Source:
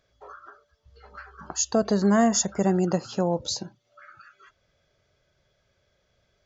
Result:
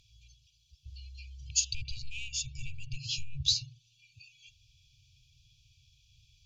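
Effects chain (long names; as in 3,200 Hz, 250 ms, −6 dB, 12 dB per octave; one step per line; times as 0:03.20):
soft clipping −18.5 dBFS, distortion −13 dB
treble cut that deepens with the level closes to 2,500 Hz, closed at −24.5 dBFS
0:03.08–0:03.52: double-tracking delay 14 ms −4.5 dB
brick-wall band-stop 140–2,300 Hz
level +8.5 dB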